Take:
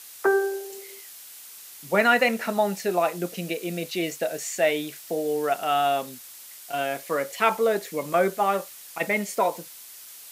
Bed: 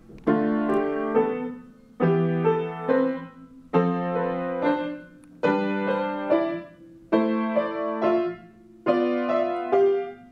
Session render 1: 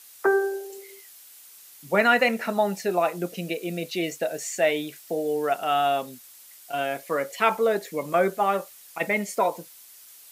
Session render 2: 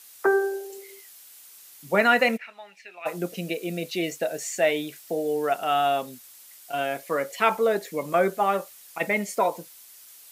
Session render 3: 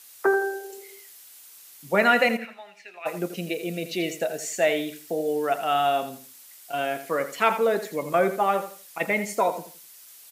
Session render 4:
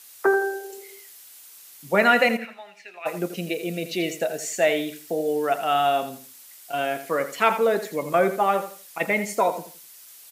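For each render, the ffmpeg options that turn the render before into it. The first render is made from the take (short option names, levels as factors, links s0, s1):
-af "afftdn=nr=6:nf=-44"
-filter_complex "[0:a]asplit=3[s0][s1][s2];[s0]afade=t=out:st=2.36:d=0.02[s3];[s1]bandpass=f=2400:t=q:w=3.9,afade=t=in:st=2.36:d=0.02,afade=t=out:st=3.05:d=0.02[s4];[s2]afade=t=in:st=3.05:d=0.02[s5];[s3][s4][s5]amix=inputs=3:normalize=0"
-af "aecho=1:1:83|166|249:0.266|0.0745|0.0209"
-af "volume=1.19"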